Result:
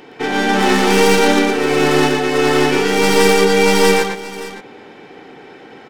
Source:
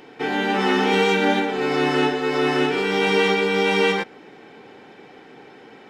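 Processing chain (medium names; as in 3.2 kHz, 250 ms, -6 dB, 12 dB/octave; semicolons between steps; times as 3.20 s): tracing distortion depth 0.18 ms; on a send: multi-tap echo 116/575 ms -4/-14.5 dB; on the sum: trim +4.5 dB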